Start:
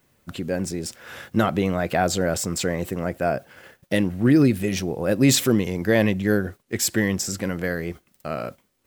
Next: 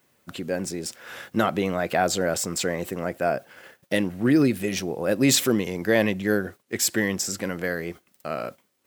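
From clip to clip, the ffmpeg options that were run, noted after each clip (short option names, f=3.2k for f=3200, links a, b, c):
-af "highpass=f=250:p=1"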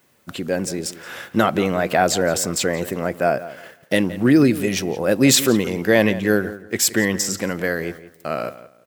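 -filter_complex "[0:a]asplit=2[a][b];[b]adelay=173,lowpass=f=3.6k:p=1,volume=-15dB,asplit=2[c][d];[d]adelay=173,lowpass=f=3.6k:p=1,volume=0.24,asplit=2[e][f];[f]adelay=173,lowpass=f=3.6k:p=1,volume=0.24[g];[a][c][e][g]amix=inputs=4:normalize=0,volume=5dB"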